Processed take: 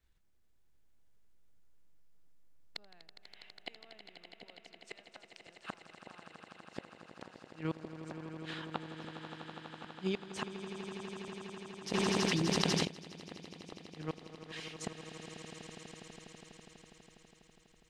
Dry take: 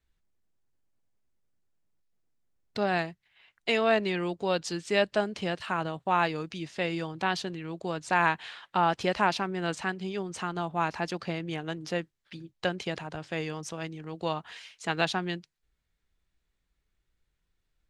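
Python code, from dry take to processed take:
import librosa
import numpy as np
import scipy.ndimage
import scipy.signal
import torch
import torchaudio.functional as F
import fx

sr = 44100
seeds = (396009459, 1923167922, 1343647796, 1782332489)

p1 = fx.highpass(x, sr, hz=820.0, slope=12, at=(4.89, 5.47))
p2 = fx.level_steps(p1, sr, step_db=19)
p3 = p1 + (p2 * librosa.db_to_amplitude(-0.5))
p4 = fx.gate_flip(p3, sr, shuts_db=-22.0, range_db=-37)
p5 = p4 + fx.echo_swell(p4, sr, ms=82, loudest=8, wet_db=-12.5, dry=0)
p6 = fx.env_flatten(p5, sr, amount_pct=100, at=(11.92, 12.84), fade=0.02)
y = p6 * librosa.db_to_amplitude(-2.0)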